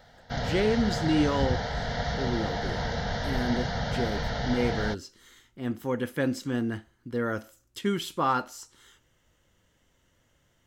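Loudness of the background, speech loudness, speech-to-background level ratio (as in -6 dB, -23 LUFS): -31.0 LUFS, -30.5 LUFS, 0.5 dB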